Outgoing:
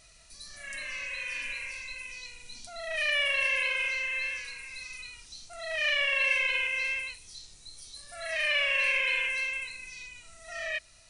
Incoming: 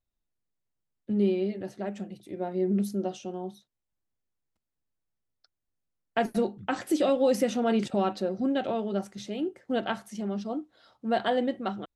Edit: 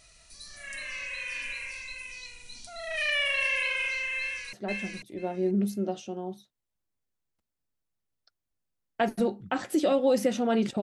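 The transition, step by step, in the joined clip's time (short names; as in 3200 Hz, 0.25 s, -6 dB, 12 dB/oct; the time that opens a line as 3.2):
outgoing
4.19–4.53 echo throw 0.49 s, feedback 15%, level -2.5 dB
4.53 switch to incoming from 1.7 s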